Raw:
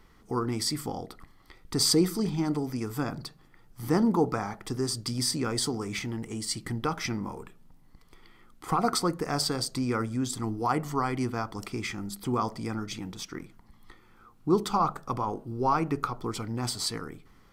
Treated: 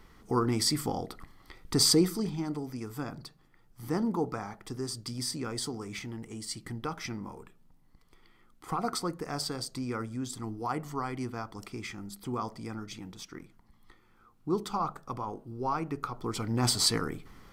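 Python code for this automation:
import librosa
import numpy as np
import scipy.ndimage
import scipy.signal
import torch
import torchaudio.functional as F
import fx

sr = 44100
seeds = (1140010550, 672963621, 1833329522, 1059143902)

y = fx.gain(x, sr, db=fx.line((1.75, 2.0), (2.46, -6.0), (16.0, -6.0), (16.7, 5.5)))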